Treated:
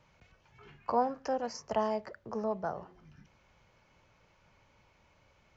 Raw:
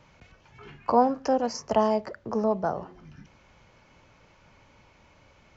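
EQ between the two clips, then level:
dynamic equaliser 1,800 Hz, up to +4 dB, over −43 dBFS, Q 1.6
parametric band 270 Hz −4 dB 0.61 octaves
−8.0 dB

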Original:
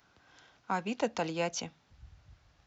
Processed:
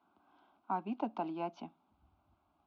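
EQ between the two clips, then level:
band-pass filter 150–2,200 Hz
high-frequency loss of the air 220 metres
phaser with its sweep stopped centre 490 Hz, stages 6
0.0 dB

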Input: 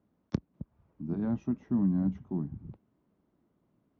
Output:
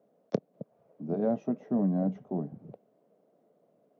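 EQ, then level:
high-pass filter 150 Hz 24 dB per octave
flat-topped bell 560 Hz +15.5 dB 1 octave
0.0 dB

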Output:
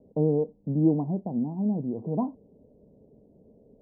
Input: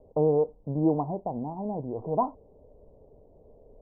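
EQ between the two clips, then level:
resonant band-pass 210 Hz, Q 2.2
+9.0 dB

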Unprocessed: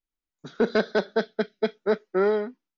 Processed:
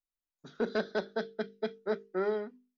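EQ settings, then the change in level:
mains-hum notches 50/100/150/200/250/300/350/400/450 Hz
notch filter 2,200 Hz, Q 18
−8.5 dB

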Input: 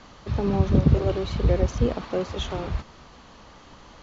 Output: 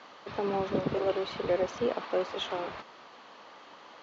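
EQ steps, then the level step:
band-pass filter 420–4,100 Hz
0.0 dB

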